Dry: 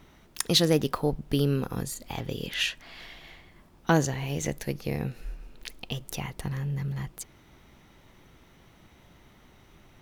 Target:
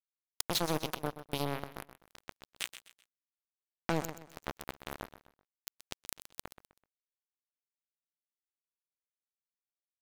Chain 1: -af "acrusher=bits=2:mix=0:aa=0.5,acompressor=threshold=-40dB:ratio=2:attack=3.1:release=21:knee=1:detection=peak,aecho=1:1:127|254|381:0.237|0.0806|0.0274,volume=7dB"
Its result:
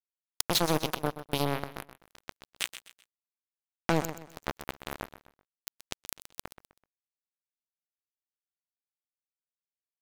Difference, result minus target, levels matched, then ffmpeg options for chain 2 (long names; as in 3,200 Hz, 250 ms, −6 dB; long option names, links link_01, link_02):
downward compressor: peak gain reduction −5.5 dB
-af "acrusher=bits=2:mix=0:aa=0.5,acompressor=threshold=-51dB:ratio=2:attack=3.1:release=21:knee=1:detection=peak,aecho=1:1:127|254|381:0.237|0.0806|0.0274,volume=7dB"